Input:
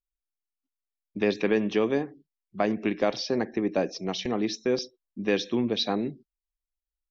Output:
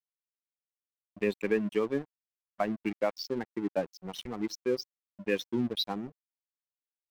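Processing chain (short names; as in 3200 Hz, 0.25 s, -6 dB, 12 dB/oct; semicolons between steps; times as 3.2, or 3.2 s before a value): per-bin expansion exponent 2; crossover distortion -43.5 dBFS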